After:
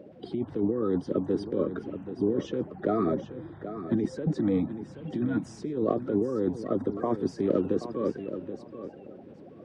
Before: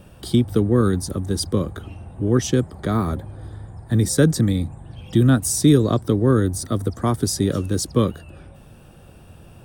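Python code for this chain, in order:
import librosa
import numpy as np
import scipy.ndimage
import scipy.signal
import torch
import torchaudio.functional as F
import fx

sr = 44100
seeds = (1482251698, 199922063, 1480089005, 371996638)

y = fx.spec_quant(x, sr, step_db=30)
y = scipy.signal.sosfilt(scipy.signal.butter(2, 260.0, 'highpass', fs=sr, output='sos'), y)
y = fx.high_shelf(y, sr, hz=2600.0, db=-8.5)
y = fx.notch(y, sr, hz=1200.0, q=13.0)
y = fx.over_compress(y, sr, threshold_db=-25.0, ratio=-1.0)
y = fx.spacing_loss(y, sr, db_at_10k=36)
y = fx.echo_feedback(y, sr, ms=779, feedback_pct=19, wet_db=-11)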